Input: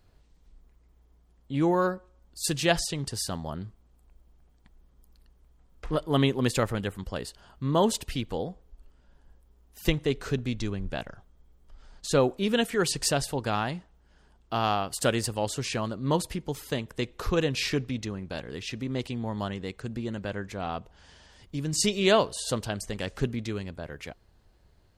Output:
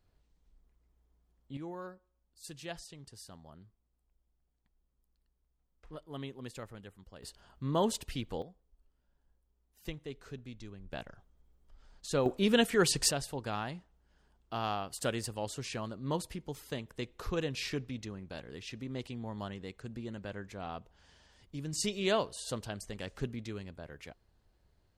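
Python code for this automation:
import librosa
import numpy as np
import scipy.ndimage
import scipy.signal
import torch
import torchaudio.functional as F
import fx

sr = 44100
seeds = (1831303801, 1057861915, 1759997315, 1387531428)

y = fx.gain(x, sr, db=fx.steps((0.0, -10.5), (1.57, -19.0), (7.23, -6.5), (8.42, -16.5), (10.93, -8.0), (12.26, -1.0), (13.11, -8.5)))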